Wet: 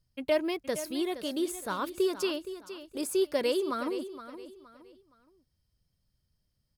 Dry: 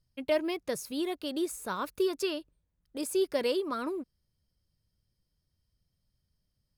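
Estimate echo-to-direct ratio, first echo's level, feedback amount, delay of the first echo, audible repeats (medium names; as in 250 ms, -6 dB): -12.0 dB, -12.5 dB, 32%, 468 ms, 3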